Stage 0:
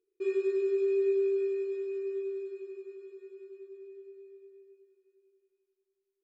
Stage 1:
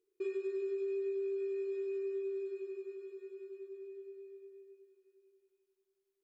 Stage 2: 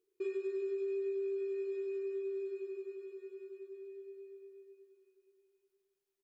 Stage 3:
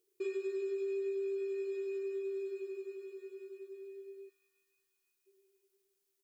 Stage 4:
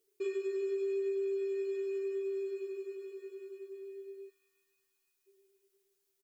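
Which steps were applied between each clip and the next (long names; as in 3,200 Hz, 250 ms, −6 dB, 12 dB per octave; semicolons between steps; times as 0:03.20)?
downward compressor 6 to 1, threshold −35 dBFS, peak gain reduction 10 dB
single-tap delay 1,185 ms −21.5 dB
gain on a spectral selection 0:04.29–0:05.27, 340–700 Hz −30 dB; high-shelf EQ 3,600 Hz +10.5 dB
comb filter 7.1 ms, depth 71%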